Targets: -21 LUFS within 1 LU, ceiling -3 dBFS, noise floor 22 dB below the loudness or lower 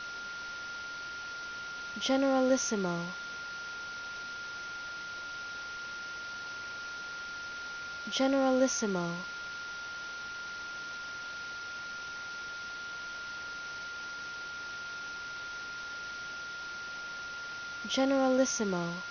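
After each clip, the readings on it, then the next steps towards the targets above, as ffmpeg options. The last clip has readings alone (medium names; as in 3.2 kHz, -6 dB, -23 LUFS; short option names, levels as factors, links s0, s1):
steady tone 1.4 kHz; tone level -39 dBFS; noise floor -41 dBFS; noise floor target -57 dBFS; loudness -35.0 LUFS; peak level -15.5 dBFS; loudness target -21.0 LUFS
-> -af "bandreject=f=1400:w=30"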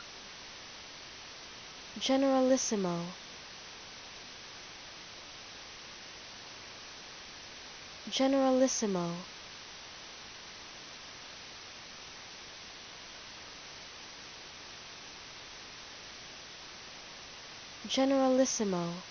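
steady tone not found; noise floor -49 dBFS; noise floor target -59 dBFS
-> -af "afftdn=nr=10:nf=-49"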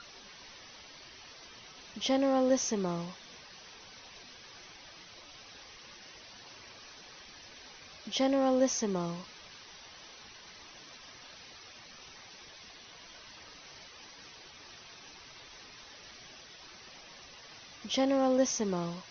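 noise floor -52 dBFS; noise floor target -53 dBFS
-> -af "afftdn=nr=6:nf=-52"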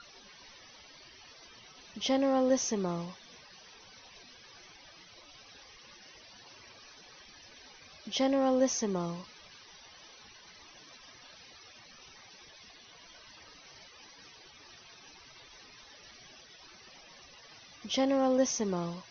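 noise floor -55 dBFS; loudness -30.5 LUFS; peak level -16.0 dBFS; loudness target -21.0 LUFS
-> -af "volume=2.99"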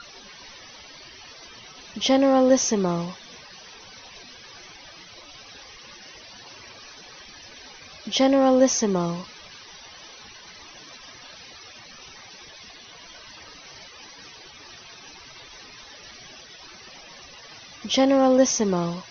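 loudness -21.0 LUFS; peak level -6.5 dBFS; noise floor -46 dBFS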